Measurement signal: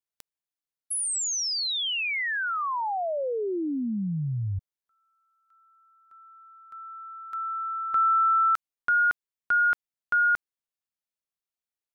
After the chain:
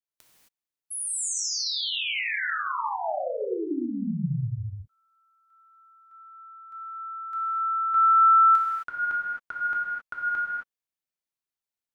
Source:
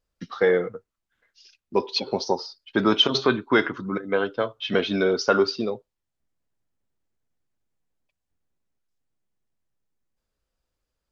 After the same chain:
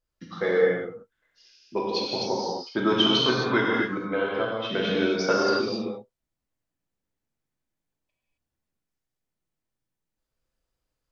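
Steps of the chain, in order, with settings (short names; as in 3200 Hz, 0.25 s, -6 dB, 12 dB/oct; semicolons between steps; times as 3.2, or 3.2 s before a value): non-linear reverb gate 0.29 s flat, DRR -4.5 dB; gain -6.5 dB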